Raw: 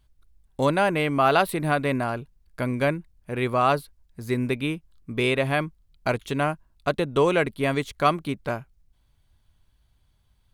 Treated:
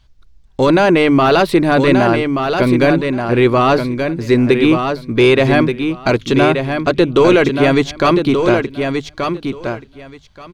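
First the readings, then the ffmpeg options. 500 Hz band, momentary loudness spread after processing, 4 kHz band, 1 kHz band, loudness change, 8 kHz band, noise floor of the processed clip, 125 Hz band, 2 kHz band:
+12.5 dB, 9 LU, +11.5 dB, +8.0 dB, +11.0 dB, n/a, -45 dBFS, +10.5 dB, +10.0 dB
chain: -filter_complex "[0:a]highshelf=f=7.8k:t=q:w=1.5:g=-12,apsyclip=20dB,asplit=2[a][b];[b]aecho=0:1:1179|2358|3537:0.501|0.0802|0.0128[c];[a][c]amix=inputs=2:normalize=0,adynamicequalizer=threshold=0.0794:dfrequency=340:dqfactor=2.1:tfrequency=340:tqfactor=2.1:attack=5:release=100:ratio=0.375:range=3.5:mode=boostabove:tftype=bell,bandreject=f=50:t=h:w=6,bandreject=f=100:t=h:w=6,bandreject=f=150:t=h:w=6,volume=-8dB"

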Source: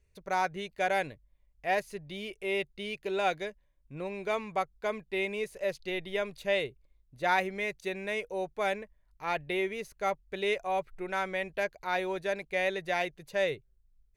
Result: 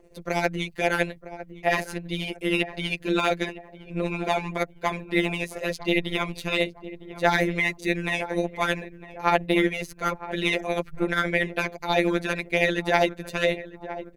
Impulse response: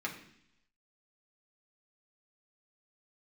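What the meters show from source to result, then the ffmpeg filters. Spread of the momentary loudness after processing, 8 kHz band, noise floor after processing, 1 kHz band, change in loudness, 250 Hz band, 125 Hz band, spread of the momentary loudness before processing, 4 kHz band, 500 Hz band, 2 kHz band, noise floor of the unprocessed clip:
8 LU, +9.0 dB, -49 dBFS, +4.5 dB, +7.0 dB, +13.0 dB, +15.0 dB, 9 LU, +9.0 dB, +5.0 dB, +7.5 dB, -68 dBFS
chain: -filter_complex "[0:a]asplit=2[a][b];[b]adelay=955,lowpass=f=1.2k:p=1,volume=-15dB,asplit=2[c][d];[d]adelay=955,lowpass=f=1.2k:p=1,volume=0.45,asplit=2[e][f];[f]adelay=955,lowpass=f=1.2k:p=1,volume=0.45,asplit=2[g][h];[h]adelay=955,lowpass=f=1.2k:p=1,volume=0.45[i];[a][c][e][g][i]amix=inputs=5:normalize=0,apsyclip=24.5dB,acrossover=split=330|610|5500[j][k][l][m];[k]acompressor=mode=upward:threshold=-21dB:ratio=2.5[n];[j][n][l][m]amix=inputs=4:normalize=0,afftfilt=real='hypot(re,im)*cos(PI*b)':imag='0':win_size=1024:overlap=0.75,tremolo=f=160:d=0.621,volume=-8.5dB"

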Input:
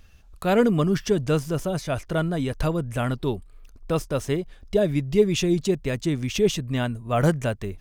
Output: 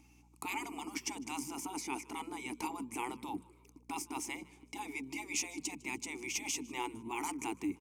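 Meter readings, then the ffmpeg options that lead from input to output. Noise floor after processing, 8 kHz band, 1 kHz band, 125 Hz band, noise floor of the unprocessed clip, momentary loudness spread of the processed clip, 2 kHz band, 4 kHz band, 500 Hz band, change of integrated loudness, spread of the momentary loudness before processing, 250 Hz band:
-63 dBFS, -2.0 dB, -8.5 dB, -32.5 dB, -50 dBFS, 8 LU, -8.0 dB, -11.0 dB, -26.0 dB, -15.5 dB, 8 LU, -16.5 dB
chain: -filter_complex "[0:a]highpass=130,afftfilt=real='re*lt(hypot(re,im),0.141)':imag='im*lt(hypot(re,im),0.141)':win_size=1024:overlap=0.75,asplit=3[a][b][c];[a]bandpass=f=300:t=q:w=8,volume=0dB[d];[b]bandpass=f=870:t=q:w=8,volume=-6dB[e];[c]bandpass=f=2.24k:t=q:w=8,volume=-9dB[f];[d][e][f]amix=inputs=3:normalize=0,bandreject=f=60:t=h:w=6,bandreject=f=120:t=h:w=6,bandreject=f=180:t=h:w=6,bandreject=f=240:t=h:w=6,aexciter=amount=13.1:drive=3.4:freq=5.5k,aeval=exprs='val(0)+0.0002*(sin(2*PI*60*n/s)+sin(2*PI*2*60*n/s)/2+sin(2*PI*3*60*n/s)/3+sin(2*PI*4*60*n/s)/4+sin(2*PI*5*60*n/s)/5)':c=same,asplit=4[g][h][i][j];[h]adelay=153,afreqshift=52,volume=-23.5dB[k];[i]adelay=306,afreqshift=104,volume=-30.4dB[l];[j]adelay=459,afreqshift=156,volume=-37.4dB[m];[g][k][l][m]amix=inputs=4:normalize=0,volume=10.5dB"

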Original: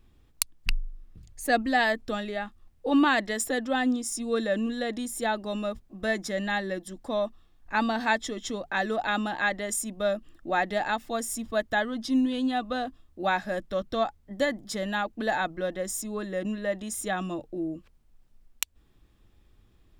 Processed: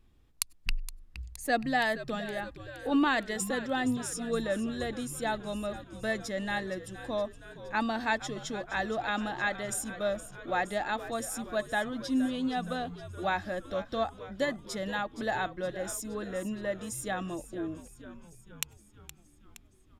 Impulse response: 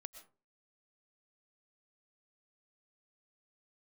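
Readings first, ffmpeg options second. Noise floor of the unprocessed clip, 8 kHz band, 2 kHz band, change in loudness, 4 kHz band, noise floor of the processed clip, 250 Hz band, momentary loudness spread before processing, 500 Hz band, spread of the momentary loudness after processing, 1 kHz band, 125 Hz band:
-61 dBFS, -4.0 dB, -4.0 dB, -4.0 dB, -4.0 dB, -59 dBFS, -4.0 dB, 9 LU, -4.0 dB, 9 LU, -4.0 dB, -0.5 dB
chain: -filter_complex "[0:a]asplit=8[a][b][c][d][e][f][g][h];[b]adelay=468,afreqshift=-84,volume=-14dB[i];[c]adelay=936,afreqshift=-168,volume=-18dB[j];[d]adelay=1404,afreqshift=-252,volume=-22dB[k];[e]adelay=1872,afreqshift=-336,volume=-26dB[l];[f]adelay=2340,afreqshift=-420,volume=-30.1dB[m];[g]adelay=2808,afreqshift=-504,volume=-34.1dB[n];[h]adelay=3276,afreqshift=-588,volume=-38.1dB[o];[a][i][j][k][l][m][n][o]amix=inputs=8:normalize=0,asplit=2[p][q];[1:a]atrim=start_sample=2205,afade=t=out:st=0.15:d=0.01,atrim=end_sample=7056[r];[q][r]afir=irnorm=-1:irlink=0,volume=-6.5dB[s];[p][s]amix=inputs=2:normalize=0,aresample=32000,aresample=44100,volume=-6dB"

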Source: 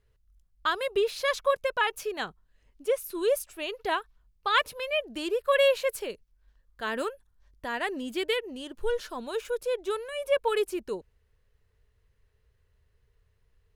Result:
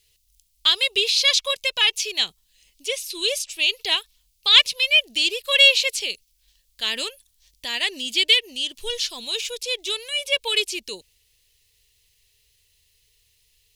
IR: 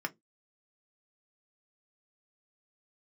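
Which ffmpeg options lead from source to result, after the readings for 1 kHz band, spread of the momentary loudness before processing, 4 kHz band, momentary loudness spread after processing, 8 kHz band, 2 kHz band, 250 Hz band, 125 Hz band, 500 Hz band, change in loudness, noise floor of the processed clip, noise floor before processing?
-5.0 dB, 10 LU, +19.0 dB, 14 LU, +14.5 dB, +9.0 dB, -4.5 dB, n/a, -4.5 dB, +9.5 dB, -66 dBFS, -69 dBFS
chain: -filter_complex "[0:a]aexciter=amount=11.1:drive=8.4:freq=2.3k,acrossover=split=6600[a][b];[b]acompressor=threshold=-42dB:ratio=4:attack=1:release=60[c];[a][c]amix=inputs=2:normalize=0,volume=-4.5dB"

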